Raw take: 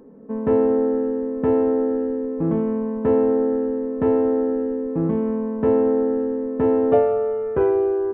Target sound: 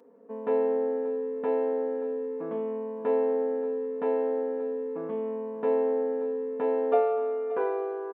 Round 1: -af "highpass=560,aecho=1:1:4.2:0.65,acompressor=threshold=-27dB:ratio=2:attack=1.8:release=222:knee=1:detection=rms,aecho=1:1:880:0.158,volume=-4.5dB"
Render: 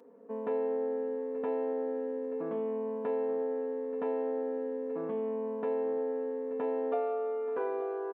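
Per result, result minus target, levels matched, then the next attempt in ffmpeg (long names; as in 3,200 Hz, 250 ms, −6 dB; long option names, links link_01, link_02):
echo 300 ms late; downward compressor: peak gain reduction +9 dB
-af "highpass=560,aecho=1:1:4.2:0.65,acompressor=threshold=-27dB:ratio=2:attack=1.8:release=222:knee=1:detection=rms,aecho=1:1:580:0.158,volume=-4.5dB"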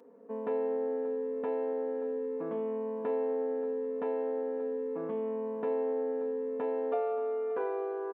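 downward compressor: peak gain reduction +9 dB
-af "highpass=560,aecho=1:1:4.2:0.65,aecho=1:1:580:0.158,volume=-4.5dB"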